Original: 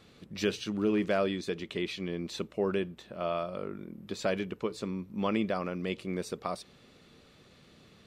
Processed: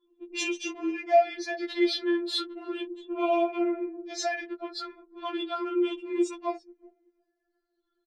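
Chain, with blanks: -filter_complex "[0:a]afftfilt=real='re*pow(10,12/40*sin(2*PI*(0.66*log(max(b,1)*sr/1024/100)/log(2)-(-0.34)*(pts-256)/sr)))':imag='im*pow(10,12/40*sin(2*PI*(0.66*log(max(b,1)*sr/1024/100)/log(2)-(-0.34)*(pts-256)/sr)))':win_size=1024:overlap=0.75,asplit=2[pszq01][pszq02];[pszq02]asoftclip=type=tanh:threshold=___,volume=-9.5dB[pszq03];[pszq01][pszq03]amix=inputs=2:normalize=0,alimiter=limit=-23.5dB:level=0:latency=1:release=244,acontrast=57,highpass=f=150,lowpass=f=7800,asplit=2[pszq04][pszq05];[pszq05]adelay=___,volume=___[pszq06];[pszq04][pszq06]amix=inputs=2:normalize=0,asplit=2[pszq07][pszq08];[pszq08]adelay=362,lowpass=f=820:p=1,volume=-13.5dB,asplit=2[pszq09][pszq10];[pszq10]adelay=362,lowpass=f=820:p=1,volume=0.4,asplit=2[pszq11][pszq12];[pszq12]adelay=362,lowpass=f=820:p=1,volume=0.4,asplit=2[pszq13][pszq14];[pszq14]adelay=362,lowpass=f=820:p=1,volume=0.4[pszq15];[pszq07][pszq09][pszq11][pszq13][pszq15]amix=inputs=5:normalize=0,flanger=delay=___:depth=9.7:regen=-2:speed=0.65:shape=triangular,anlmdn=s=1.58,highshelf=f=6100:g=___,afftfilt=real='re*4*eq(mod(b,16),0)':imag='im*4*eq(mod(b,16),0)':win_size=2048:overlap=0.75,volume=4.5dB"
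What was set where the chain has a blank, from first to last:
-30.5dB, 37, -12dB, 7.2, 4.5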